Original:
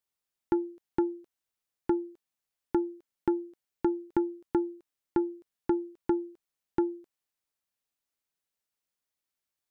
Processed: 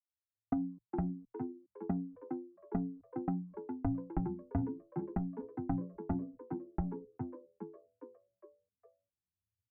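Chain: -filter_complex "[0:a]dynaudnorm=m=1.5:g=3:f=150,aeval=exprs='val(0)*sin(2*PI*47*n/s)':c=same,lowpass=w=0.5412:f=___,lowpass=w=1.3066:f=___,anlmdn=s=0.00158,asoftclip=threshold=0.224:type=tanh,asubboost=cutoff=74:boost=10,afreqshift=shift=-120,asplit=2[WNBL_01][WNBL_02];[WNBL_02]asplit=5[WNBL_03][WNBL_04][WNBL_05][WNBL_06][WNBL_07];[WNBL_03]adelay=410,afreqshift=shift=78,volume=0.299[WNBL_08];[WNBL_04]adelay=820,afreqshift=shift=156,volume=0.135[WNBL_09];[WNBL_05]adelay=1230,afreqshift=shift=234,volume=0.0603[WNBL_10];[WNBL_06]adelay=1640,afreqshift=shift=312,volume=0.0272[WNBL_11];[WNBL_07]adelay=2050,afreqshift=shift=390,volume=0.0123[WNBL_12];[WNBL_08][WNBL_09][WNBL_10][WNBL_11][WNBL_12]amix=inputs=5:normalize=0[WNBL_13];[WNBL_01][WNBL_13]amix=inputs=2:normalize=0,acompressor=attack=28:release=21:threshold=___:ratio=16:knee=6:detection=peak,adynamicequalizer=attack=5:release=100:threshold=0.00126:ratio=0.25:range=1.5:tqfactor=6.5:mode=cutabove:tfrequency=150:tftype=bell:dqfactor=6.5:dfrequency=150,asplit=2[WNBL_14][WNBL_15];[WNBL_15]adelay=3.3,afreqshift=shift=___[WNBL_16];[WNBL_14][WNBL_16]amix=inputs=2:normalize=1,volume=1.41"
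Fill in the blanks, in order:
1300, 1300, 0.0178, 1.2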